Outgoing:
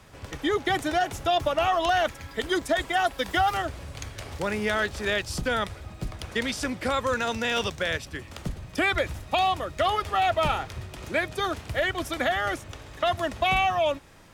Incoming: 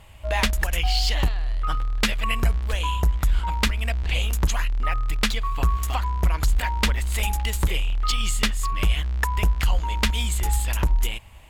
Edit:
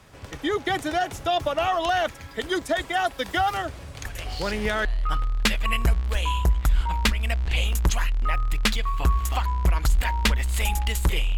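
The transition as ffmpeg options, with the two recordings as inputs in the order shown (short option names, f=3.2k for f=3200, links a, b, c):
-filter_complex "[1:a]asplit=2[a][b];[0:a]apad=whole_dur=11.37,atrim=end=11.37,atrim=end=4.852[c];[b]atrim=start=1.428:end=7.95[d];[a]atrim=start=0.63:end=1.43,asetpts=PTS-STARTPTS,volume=-11.5dB,afade=t=in:d=0.004:c=hsin,afade=t=out:st=0.796:d=0.004:c=hsin,adelay=178605S[e];[c][d]acrossfade=d=0.004:c1=hsin:c2=hsin[f];[f][e]amix=inputs=2:normalize=0"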